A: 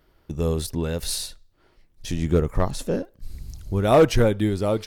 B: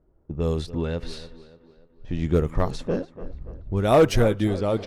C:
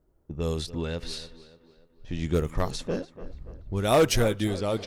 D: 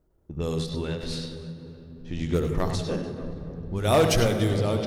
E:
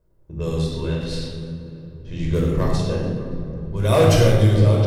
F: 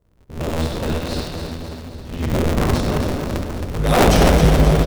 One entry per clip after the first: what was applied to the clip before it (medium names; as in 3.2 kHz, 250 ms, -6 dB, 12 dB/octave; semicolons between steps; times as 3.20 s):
level-controlled noise filter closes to 580 Hz, open at -16.5 dBFS; tape echo 290 ms, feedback 52%, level -14 dB, low-pass 2.4 kHz; trim -1 dB
treble shelf 2.6 kHz +11.5 dB; trim -4.5 dB
on a send at -5 dB: reverberation RT60 3.5 s, pre-delay 68 ms; on the sum: endings held to a fixed fall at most 110 dB/s
simulated room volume 2000 m³, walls furnished, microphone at 5.2 m; trim -2 dB
cycle switcher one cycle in 2, inverted; feedback delay 268 ms, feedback 53%, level -7.5 dB; trim +1 dB